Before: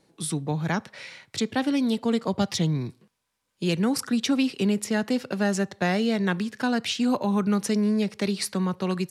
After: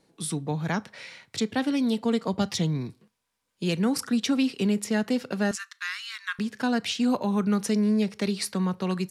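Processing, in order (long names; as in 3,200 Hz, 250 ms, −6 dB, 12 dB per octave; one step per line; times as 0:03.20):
0:05.51–0:06.39: Butterworth high-pass 1,100 Hz 72 dB per octave
on a send: convolution reverb, pre-delay 4 ms, DRR 16 dB
on the sum: level −1.5 dB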